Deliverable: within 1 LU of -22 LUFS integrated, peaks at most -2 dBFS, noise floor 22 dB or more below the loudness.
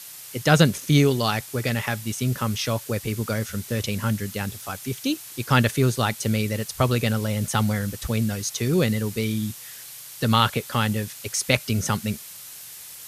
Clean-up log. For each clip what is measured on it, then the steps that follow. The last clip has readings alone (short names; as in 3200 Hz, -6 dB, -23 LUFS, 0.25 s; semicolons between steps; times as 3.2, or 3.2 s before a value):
noise floor -41 dBFS; noise floor target -46 dBFS; loudness -24.0 LUFS; peak -3.0 dBFS; loudness target -22.0 LUFS
-> noise print and reduce 6 dB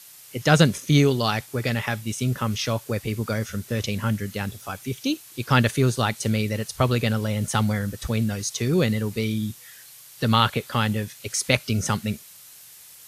noise floor -47 dBFS; loudness -24.0 LUFS; peak -3.0 dBFS; loudness target -22.0 LUFS
-> gain +2 dB; limiter -2 dBFS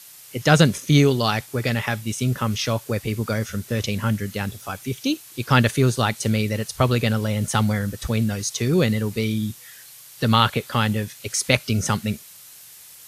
loudness -22.0 LUFS; peak -2.0 dBFS; noise floor -45 dBFS